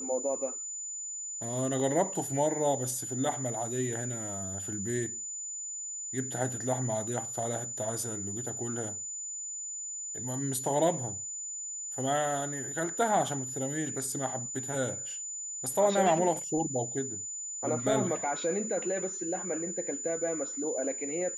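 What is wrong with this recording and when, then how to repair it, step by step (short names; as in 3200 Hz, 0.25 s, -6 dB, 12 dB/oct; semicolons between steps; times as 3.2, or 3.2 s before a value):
tone 7000 Hz -36 dBFS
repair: notch 7000 Hz, Q 30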